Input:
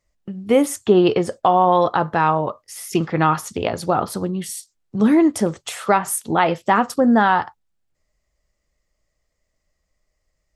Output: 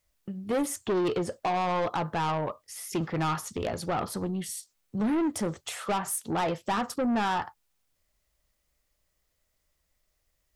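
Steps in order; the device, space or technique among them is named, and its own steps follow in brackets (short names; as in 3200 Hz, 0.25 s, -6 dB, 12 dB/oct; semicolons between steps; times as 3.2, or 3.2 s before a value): open-reel tape (soft clip -17.5 dBFS, distortion -8 dB; bell 77 Hz +3.5 dB; white noise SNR 48 dB); gain -6 dB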